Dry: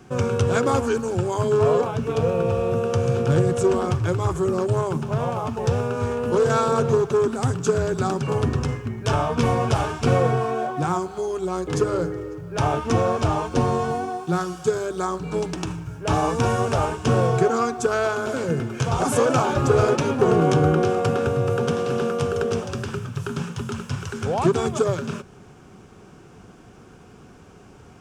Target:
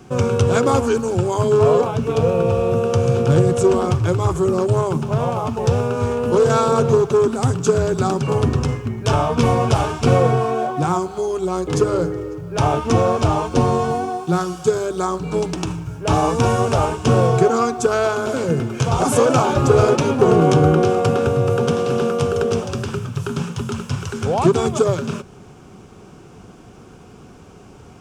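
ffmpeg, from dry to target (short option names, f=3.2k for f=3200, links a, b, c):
-af "equalizer=f=1.7k:t=o:w=0.54:g=-4.5,volume=4.5dB"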